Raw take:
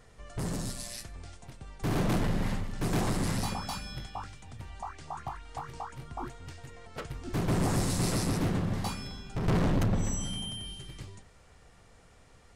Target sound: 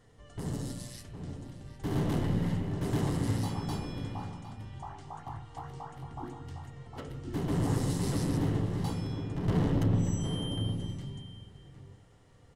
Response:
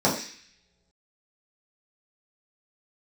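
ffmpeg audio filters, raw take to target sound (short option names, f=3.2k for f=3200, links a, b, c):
-filter_complex "[0:a]asplit=2[a][b];[b]adelay=758,volume=-7dB,highshelf=f=4k:g=-17.1[c];[a][c]amix=inputs=2:normalize=0,asplit=2[d][e];[1:a]atrim=start_sample=2205,asetrate=23373,aresample=44100,lowpass=3.4k[f];[e][f]afir=irnorm=-1:irlink=0,volume=-21.5dB[g];[d][g]amix=inputs=2:normalize=0,volume=-7dB"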